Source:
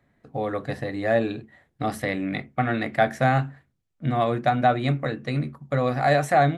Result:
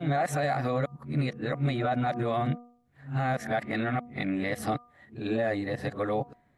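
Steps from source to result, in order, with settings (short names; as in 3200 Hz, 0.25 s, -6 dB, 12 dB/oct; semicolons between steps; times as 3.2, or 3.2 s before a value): whole clip reversed; de-hum 241 Hz, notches 5; limiter -17.5 dBFS, peak gain reduction 9.5 dB; gain -1.5 dB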